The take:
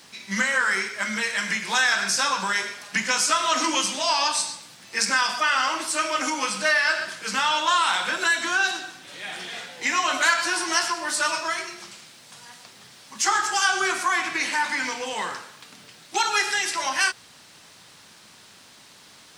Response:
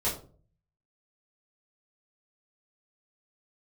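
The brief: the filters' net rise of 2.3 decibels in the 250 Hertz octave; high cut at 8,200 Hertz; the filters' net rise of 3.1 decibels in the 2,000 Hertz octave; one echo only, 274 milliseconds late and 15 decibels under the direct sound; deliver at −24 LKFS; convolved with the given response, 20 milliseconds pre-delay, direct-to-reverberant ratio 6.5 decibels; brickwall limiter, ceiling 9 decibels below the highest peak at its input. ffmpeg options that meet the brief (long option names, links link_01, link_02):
-filter_complex "[0:a]lowpass=8200,equalizer=frequency=250:width_type=o:gain=3,equalizer=frequency=2000:width_type=o:gain=4,alimiter=limit=-13dB:level=0:latency=1,aecho=1:1:274:0.178,asplit=2[link_01][link_02];[1:a]atrim=start_sample=2205,adelay=20[link_03];[link_02][link_03]afir=irnorm=-1:irlink=0,volume=-14.5dB[link_04];[link_01][link_04]amix=inputs=2:normalize=0,volume=-1.5dB"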